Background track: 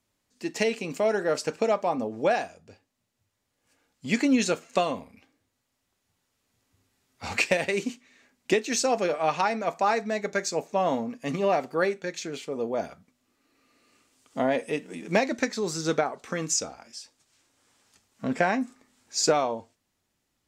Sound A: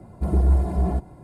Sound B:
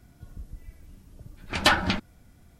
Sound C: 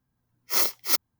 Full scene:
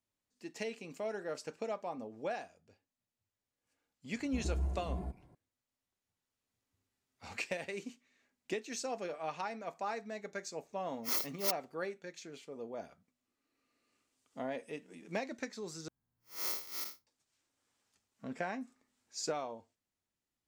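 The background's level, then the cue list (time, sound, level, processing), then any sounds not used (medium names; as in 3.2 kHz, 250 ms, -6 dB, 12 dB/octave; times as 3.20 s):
background track -14.5 dB
4.12 s: add A -17 dB
10.55 s: add C -11.5 dB
15.88 s: replace with C -10 dB + spectral blur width 145 ms
not used: B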